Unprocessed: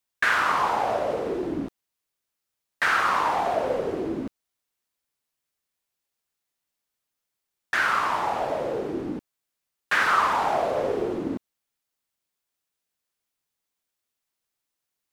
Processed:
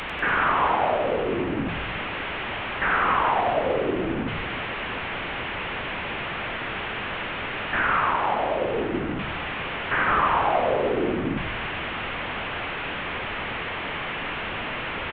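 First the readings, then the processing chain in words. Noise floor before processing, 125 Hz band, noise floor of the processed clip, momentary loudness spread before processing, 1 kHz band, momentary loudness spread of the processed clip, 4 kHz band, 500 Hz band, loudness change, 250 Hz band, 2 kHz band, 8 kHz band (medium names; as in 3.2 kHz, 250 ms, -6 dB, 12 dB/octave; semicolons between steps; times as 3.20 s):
-84 dBFS, +9.5 dB, -31 dBFS, 12 LU, +2.0 dB, 8 LU, +5.5 dB, +2.5 dB, -1.0 dB, +4.0 dB, +2.5 dB, under -25 dB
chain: one-bit delta coder 16 kbps, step -25 dBFS; on a send: frequency-shifting echo 96 ms, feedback 59%, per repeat -110 Hz, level -5 dB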